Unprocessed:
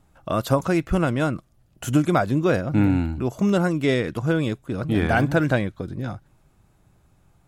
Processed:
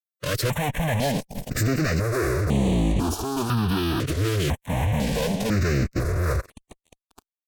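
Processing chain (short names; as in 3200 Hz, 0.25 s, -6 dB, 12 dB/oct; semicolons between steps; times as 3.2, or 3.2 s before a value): Doppler pass-by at 2.02, 49 m/s, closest 6.1 m; recorder AGC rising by 34 dB/s; dynamic EQ 140 Hz, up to +3 dB, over -37 dBFS, Q 0.74; reverse; compressor 10:1, threshold -30 dBFS, peak gain reduction 15 dB; reverse; fuzz box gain 58 dB, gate -50 dBFS; formant-preserving pitch shift -4.5 st; step phaser 2 Hz 220–5100 Hz; gain -5.5 dB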